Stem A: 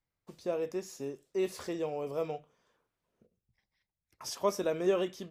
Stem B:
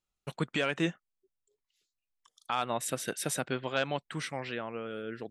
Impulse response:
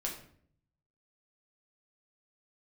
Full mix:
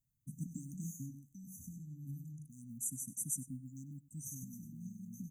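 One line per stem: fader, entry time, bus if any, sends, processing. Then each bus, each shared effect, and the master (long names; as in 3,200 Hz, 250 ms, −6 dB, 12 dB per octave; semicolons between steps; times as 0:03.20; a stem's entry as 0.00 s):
+2.5 dB, 0.00 s, no send, echo send −7 dB, octave-band graphic EQ 125/500/1,000/2,000/4,000/8,000 Hz +9/−8/+8/+9/+7/−10 dB; downward compressor 6 to 1, threshold −37 dBFS, peak gain reduction 15.5 dB
−4.0 dB, 0.00 s, no send, echo send −18 dB, floating-point word with a short mantissa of 6 bits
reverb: not used
echo: single-tap delay 98 ms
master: linear-phase brick-wall band-stop 290–5,900 Hz; high-shelf EQ 7,000 Hz +9 dB; tuned comb filter 130 Hz, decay 0.66 s, harmonics odd, mix 30%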